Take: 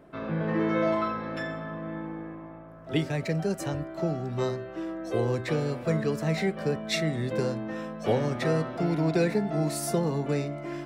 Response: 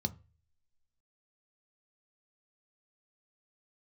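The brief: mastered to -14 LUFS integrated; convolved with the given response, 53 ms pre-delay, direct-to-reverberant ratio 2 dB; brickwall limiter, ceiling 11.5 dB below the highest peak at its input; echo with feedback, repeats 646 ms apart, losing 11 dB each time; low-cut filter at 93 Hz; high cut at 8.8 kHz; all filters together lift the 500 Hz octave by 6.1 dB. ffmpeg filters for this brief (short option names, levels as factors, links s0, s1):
-filter_complex "[0:a]highpass=93,lowpass=8800,equalizer=f=500:t=o:g=7.5,alimiter=limit=0.0944:level=0:latency=1,aecho=1:1:646|1292|1938:0.282|0.0789|0.0221,asplit=2[s0][s1];[1:a]atrim=start_sample=2205,adelay=53[s2];[s1][s2]afir=irnorm=-1:irlink=0,volume=0.668[s3];[s0][s3]amix=inputs=2:normalize=0,volume=3.16"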